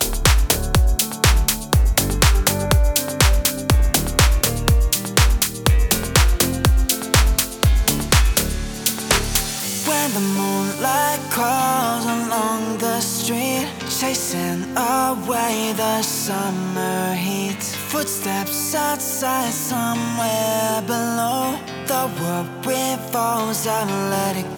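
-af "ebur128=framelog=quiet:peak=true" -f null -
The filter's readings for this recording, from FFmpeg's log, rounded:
Integrated loudness:
  I:         -19.2 LUFS
  Threshold: -29.2 LUFS
Loudness range:
  LRA:         4.3 LU
  Threshold: -39.3 LUFS
  LRA low:   -21.5 LUFS
  LRA high:  -17.3 LUFS
True peak:
  Peak:       -1.4 dBFS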